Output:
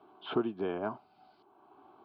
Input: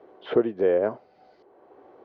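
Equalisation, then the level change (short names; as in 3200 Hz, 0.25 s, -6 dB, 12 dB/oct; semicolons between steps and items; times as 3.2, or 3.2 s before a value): HPF 150 Hz 6 dB/oct; fixed phaser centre 1900 Hz, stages 6; 0.0 dB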